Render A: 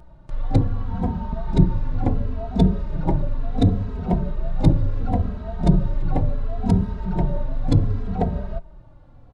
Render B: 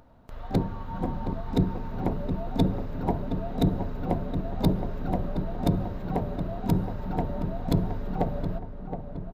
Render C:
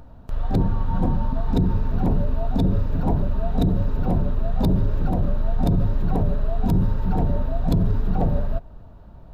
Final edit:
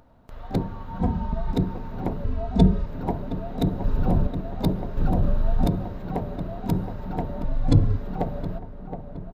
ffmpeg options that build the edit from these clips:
-filter_complex "[0:a]asplit=3[a][b][c];[2:a]asplit=2[d][e];[1:a]asplit=6[f][g][h][i][j][k];[f]atrim=end=1.002[l];[a]atrim=start=0.998:end=1.522[m];[g]atrim=start=1.518:end=2.242[n];[b]atrim=start=2.238:end=2.862[o];[h]atrim=start=2.858:end=3.842[p];[d]atrim=start=3.838:end=4.272[q];[i]atrim=start=4.268:end=4.972[r];[e]atrim=start=4.968:end=5.662[s];[j]atrim=start=5.658:end=7.442[t];[c]atrim=start=7.438:end=7.972[u];[k]atrim=start=7.968[v];[l][m]acrossfade=d=0.004:c1=hsin:c2=hsin[w];[w][n]acrossfade=d=0.004:c1=hsin:c2=hsin[x];[x][o]acrossfade=d=0.004:c1=hsin:c2=hsin[y];[y][p]acrossfade=d=0.004:c1=hsin:c2=hsin[z];[z][q]acrossfade=d=0.004:c1=hsin:c2=hsin[aa];[aa][r]acrossfade=d=0.004:c1=hsin:c2=hsin[ab];[ab][s]acrossfade=d=0.004:c1=hsin:c2=hsin[ac];[ac][t]acrossfade=d=0.004:c1=hsin:c2=hsin[ad];[ad][u]acrossfade=d=0.004:c1=hsin:c2=hsin[ae];[ae][v]acrossfade=d=0.004:c1=hsin:c2=hsin"

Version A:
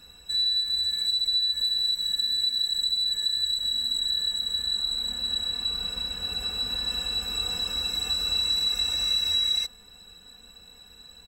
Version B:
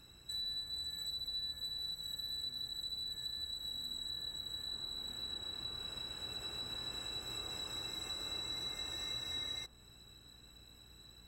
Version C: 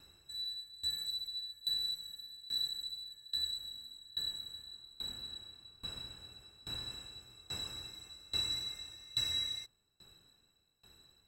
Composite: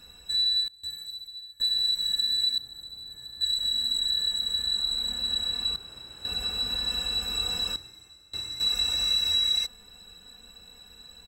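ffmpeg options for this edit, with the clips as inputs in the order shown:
-filter_complex "[2:a]asplit=2[a][b];[1:a]asplit=2[c][d];[0:a]asplit=5[e][f][g][h][i];[e]atrim=end=0.682[j];[a]atrim=start=0.678:end=1.602[k];[f]atrim=start=1.598:end=2.582[l];[c]atrim=start=2.578:end=3.412[m];[g]atrim=start=3.408:end=5.762[n];[d]atrim=start=5.758:end=6.252[o];[h]atrim=start=6.248:end=7.762[p];[b]atrim=start=7.758:end=8.602[q];[i]atrim=start=8.598[r];[j][k]acrossfade=d=0.004:c1=hsin:c2=hsin[s];[s][l]acrossfade=d=0.004:c1=hsin:c2=hsin[t];[t][m]acrossfade=d=0.004:c1=hsin:c2=hsin[u];[u][n]acrossfade=d=0.004:c1=hsin:c2=hsin[v];[v][o]acrossfade=d=0.004:c1=hsin:c2=hsin[w];[w][p]acrossfade=d=0.004:c1=hsin:c2=hsin[x];[x][q]acrossfade=d=0.004:c1=hsin:c2=hsin[y];[y][r]acrossfade=d=0.004:c1=hsin:c2=hsin"

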